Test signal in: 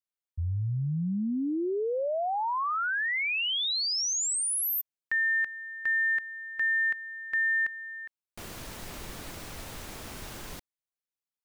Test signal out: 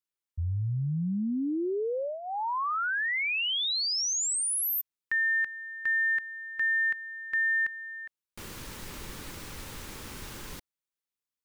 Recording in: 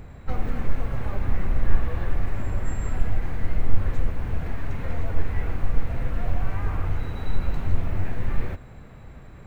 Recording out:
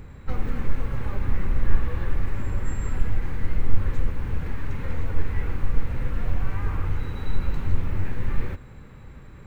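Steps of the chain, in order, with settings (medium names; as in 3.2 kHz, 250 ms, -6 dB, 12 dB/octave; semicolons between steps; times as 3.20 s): peaking EQ 680 Hz -12 dB 0.26 oct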